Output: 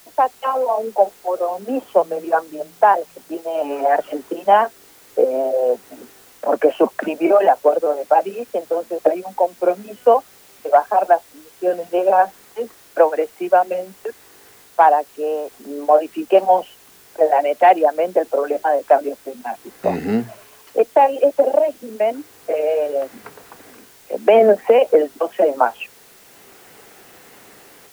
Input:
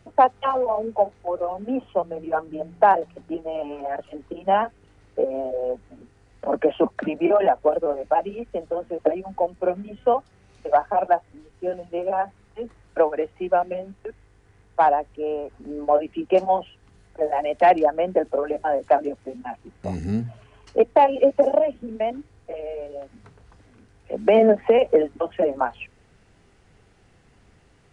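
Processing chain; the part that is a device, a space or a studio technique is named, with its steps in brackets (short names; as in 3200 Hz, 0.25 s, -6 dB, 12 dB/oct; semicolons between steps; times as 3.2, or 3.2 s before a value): dictaphone (BPF 340–3100 Hz; AGC gain up to 16 dB; wow and flutter; white noise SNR 30 dB); gain -1 dB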